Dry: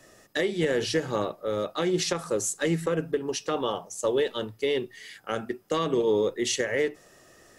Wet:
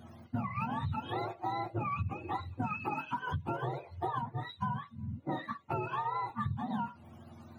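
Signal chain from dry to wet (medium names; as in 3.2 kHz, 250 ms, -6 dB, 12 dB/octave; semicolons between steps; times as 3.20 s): spectrum inverted on a logarithmic axis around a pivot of 650 Hz; compression 12:1, threshold -34 dBFS, peak gain reduction 16 dB; 4.21–6.30 s: three bands expanded up and down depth 70%; trim +2.5 dB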